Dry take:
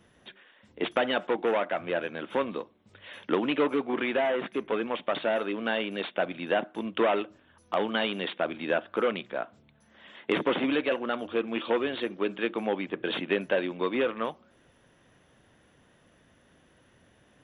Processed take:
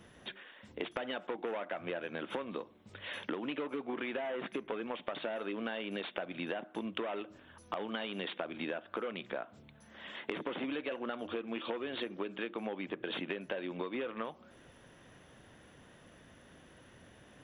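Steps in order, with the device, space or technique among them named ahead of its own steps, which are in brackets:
serial compression, peaks first (downward compressor, threshold −34 dBFS, peak gain reduction 13 dB; downward compressor 2 to 1, threshold −41 dBFS, peak gain reduction 6 dB)
level +3.5 dB

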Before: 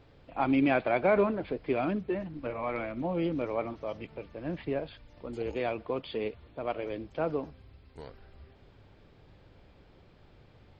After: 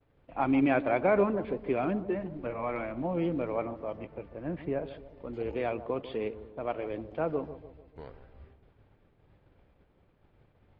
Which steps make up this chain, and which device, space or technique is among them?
hearing-loss simulation (low-pass filter 2,600 Hz 12 dB per octave; downward expander −50 dBFS)
0:03.65–0:04.85: parametric band 3,800 Hz −5 dB 1.4 octaves
bucket-brigade delay 147 ms, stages 1,024, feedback 48%, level −13 dB

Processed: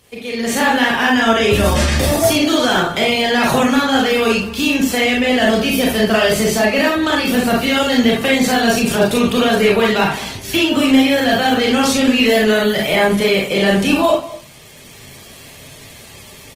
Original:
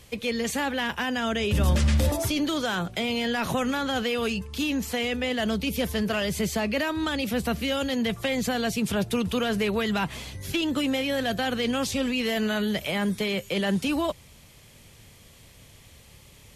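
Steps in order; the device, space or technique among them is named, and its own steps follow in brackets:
0:10.22–0:11.03: double-tracking delay 18 ms −8 dB
slap from a distant wall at 36 metres, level −18 dB
far-field microphone of a smart speaker (convolution reverb RT60 0.40 s, pre-delay 30 ms, DRR −3 dB; high-pass filter 130 Hz 6 dB per octave; automatic gain control gain up to 11.5 dB; Opus 20 kbit/s 48,000 Hz)

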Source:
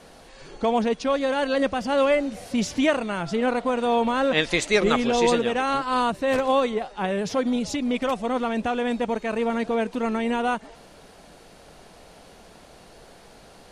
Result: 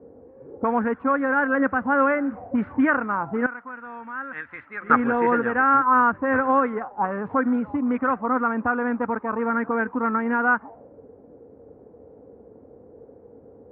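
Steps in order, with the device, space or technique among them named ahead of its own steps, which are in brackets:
envelope filter bass rig (envelope-controlled low-pass 430–1,500 Hz up, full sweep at −20.5 dBFS; loudspeaker in its box 68–2,100 Hz, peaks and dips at 94 Hz +5 dB, 170 Hz −8 dB, 270 Hz +5 dB, 380 Hz −6 dB, 640 Hz −9 dB)
0:03.46–0:04.90: guitar amp tone stack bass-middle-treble 5-5-5

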